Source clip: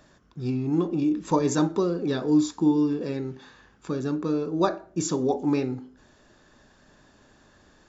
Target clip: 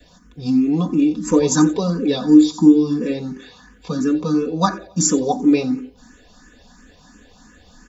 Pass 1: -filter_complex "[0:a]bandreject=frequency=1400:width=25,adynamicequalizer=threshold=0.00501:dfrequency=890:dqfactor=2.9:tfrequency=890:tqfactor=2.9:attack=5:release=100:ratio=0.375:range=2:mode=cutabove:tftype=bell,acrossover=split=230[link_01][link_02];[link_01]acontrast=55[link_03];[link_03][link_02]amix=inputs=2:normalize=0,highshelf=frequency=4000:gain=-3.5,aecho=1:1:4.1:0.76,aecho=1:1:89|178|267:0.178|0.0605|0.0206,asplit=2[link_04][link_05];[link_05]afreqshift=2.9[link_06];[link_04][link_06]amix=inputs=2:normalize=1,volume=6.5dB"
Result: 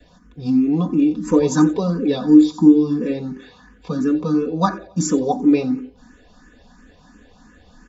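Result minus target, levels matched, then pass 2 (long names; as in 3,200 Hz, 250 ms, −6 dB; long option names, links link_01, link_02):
8,000 Hz band −8.0 dB
-filter_complex "[0:a]bandreject=frequency=1400:width=25,adynamicequalizer=threshold=0.00501:dfrequency=890:dqfactor=2.9:tfrequency=890:tqfactor=2.9:attack=5:release=100:ratio=0.375:range=2:mode=cutabove:tftype=bell,acrossover=split=230[link_01][link_02];[link_01]acontrast=55[link_03];[link_03][link_02]amix=inputs=2:normalize=0,highshelf=frequency=4000:gain=7.5,aecho=1:1:4.1:0.76,aecho=1:1:89|178|267:0.178|0.0605|0.0206,asplit=2[link_04][link_05];[link_05]afreqshift=2.9[link_06];[link_04][link_06]amix=inputs=2:normalize=1,volume=6.5dB"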